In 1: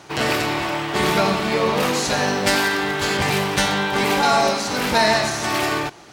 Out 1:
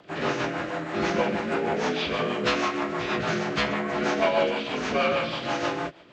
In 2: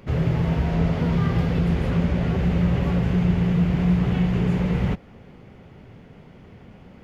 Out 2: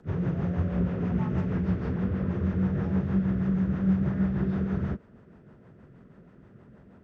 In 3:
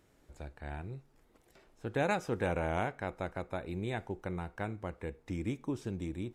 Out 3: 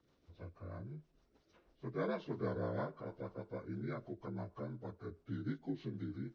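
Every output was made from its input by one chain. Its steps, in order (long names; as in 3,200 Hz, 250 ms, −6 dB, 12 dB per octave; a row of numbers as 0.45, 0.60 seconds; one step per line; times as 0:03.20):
partials spread apart or drawn together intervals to 80%
rotating-speaker cabinet horn 6.3 Hz
level −2.5 dB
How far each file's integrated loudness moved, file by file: −7.0, −6.0, −6.0 LU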